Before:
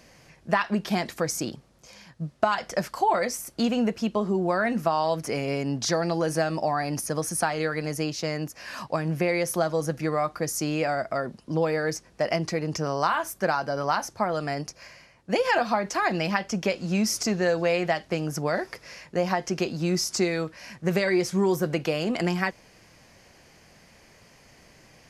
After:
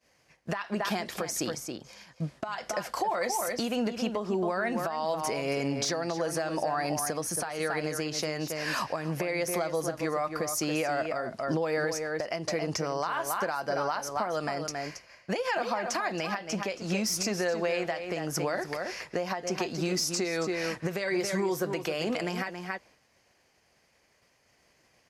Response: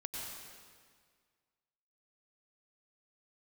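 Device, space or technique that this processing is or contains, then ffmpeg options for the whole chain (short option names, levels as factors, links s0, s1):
podcast mastering chain: -filter_complex "[0:a]agate=range=0.0224:threshold=0.00794:ratio=3:detection=peak,highpass=f=90:p=1,equalizer=f=170:t=o:w=1.6:g=-6,asplit=2[s0][s1];[s1]adelay=274.1,volume=0.355,highshelf=f=4000:g=-6.17[s2];[s0][s2]amix=inputs=2:normalize=0,deesser=0.5,acompressor=threshold=0.0355:ratio=4,alimiter=level_in=1.19:limit=0.0631:level=0:latency=1:release=441,volume=0.841,volume=2.24" -ar 44100 -c:a libmp3lame -b:a 96k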